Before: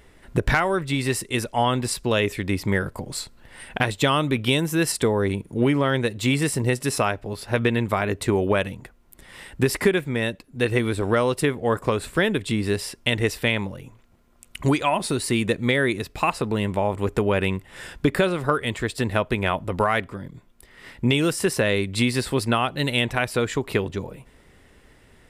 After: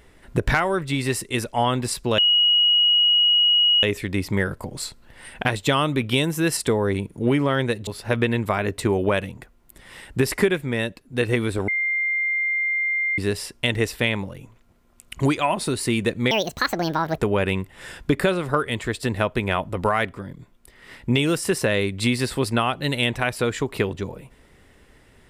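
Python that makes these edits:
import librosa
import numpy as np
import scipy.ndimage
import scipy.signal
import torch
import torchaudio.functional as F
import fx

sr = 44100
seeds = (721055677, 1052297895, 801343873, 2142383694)

y = fx.edit(x, sr, fx.insert_tone(at_s=2.18, length_s=1.65, hz=2900.0, db=-14.0),
    fx.cut(start_s=6.22, length_s=1.08),
    fx.bleep(start_s=11.11, length_s=1.5, hz=2100.0, db=-20.0),
    fx.speed_span(start_s=15.74, length_s=1.39, speed=1.6), tone=tone)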